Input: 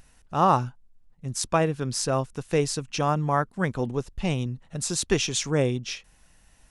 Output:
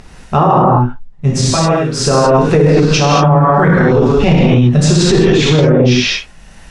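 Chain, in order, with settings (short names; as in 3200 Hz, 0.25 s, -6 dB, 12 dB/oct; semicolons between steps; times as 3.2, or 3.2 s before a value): gate -49 dBFS, range -10 dB; 1.28–2.17 dip -15 dB, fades 0.29 s; treble ducked by the level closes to 900 Hz, closed at -18 dBFS; 2.78–4.52 high shelf 4700 Hz +9.5 dB; upward compressor, threshold -50 dBFS; air absorption 66 m; non-linear reverb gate 0.26 s flat, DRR -7.5 dB; maximiser +18.5 dB; gain -1 dB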